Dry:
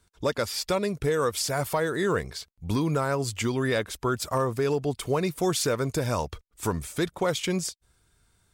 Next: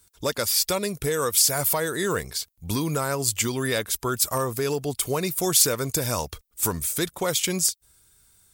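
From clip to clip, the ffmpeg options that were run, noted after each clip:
ffmpeg -i in.wav -af "aemphasis=mode=production:type=75fm" out.wav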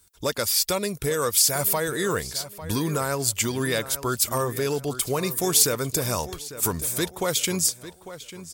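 ffmpeg -i in.wav -filter_complex "[0:a]asplit=2[link_01][link_02];[link_02]adelay=849,lowpass=frequency=4300:poles=1,volume=-13.5dB,asplit=2[link_03][link_04];[link_04]adelay=849,lowpass=frequency=4300:poles=1,volume=0.33,asplit=2[link_05][link_06];[link_06]adelay=849,lowpass=frequency=4300:poles=1,volume=0.33[link_07];[link_01][link_03][link_05][link_07]amix=inputs=4:normalize=0" out.wav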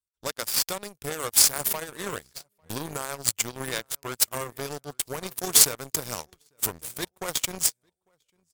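ffmpeg -i in.wav -af "aeval=exprs='0.596*(cos(1*acos(clip(val(0)/0.596,-1,1)))-cos(1*PI/2))+0.0841*(cos(7*acos(clip(val(0)/0.596,-1,1)))-cos(7*PI/2))':channel_layout=same,volume=3.5dB" out.wav

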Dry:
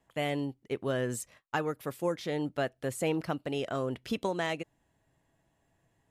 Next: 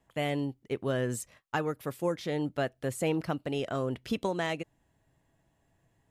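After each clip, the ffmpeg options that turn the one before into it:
ffmpeg -i in.wav -af "lowshelf=frequency=190:gain=4" out.wav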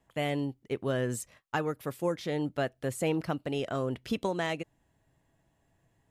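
ffmpeg -i in.wav -af anull out.wav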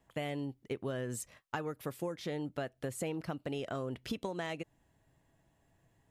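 ffmpeg -i in.wav -af "acompressor=threshold=-34dB:ratio=6" out.wav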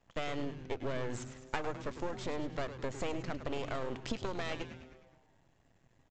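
ffmpeg -i in.wav -filter_complex "[0:a]aresample=16000,aeval=exprs='max(val(0),0)':channel_layout=same,aresample=44100,asplit=8[link_01][link_02][link_03][link_04][link_05][link_06][link_07][link_08];[link_02]adelay=104,afreqshift=-130,volume=-10.5dB[link_09];[link_03]adelay=208,afreqshift=-260,volume=-15.2dB[link_10];[link_04]adelay=312,afreqshift=-390,volume=-20dB[link_11];[link_05]adelay=416,afreqshift=-520,volume=-24.7dB[link_12];[link_06]adelay=520,afreqshift=-650,volume=-29.4dB[link_13];[link_07]adelay=624,afreqshift=-780,volume=-34.2dB[link_14];[link_08]adelay=728,afreqshift=-910,volume=-38.9dB[link_15];[link_01][link_09][link_10][link_11][link_12][link_13][link_14][link_15]amix=inputs=8:normalize=0,volume=5dB" out.wav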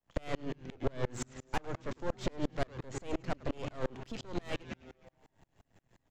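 ffmpeg -i in.wav -filter_complex "[0:a]acrossover=split=270[link_01][link_02];[link_02]asoftclip=type=tanh:threshold=-35.5dB[link_03];[link_01][link_03]amix=inputs=2:normalize=0,aeval=exprs='val(0)*pow(10,-33*if(lt(mod(-5.7*n/s,1),2*abs(-5.7)/1000),1-mod(-5.7*n/s,1)/(2*abs(-5.7)/1000),(mod(-5.7*n/s,1)-2*abs(-5.7)/1000)/(1-2*abs(-5.7)/1000))/20)':channel_layout=same,volume=10.5dB" out.wav

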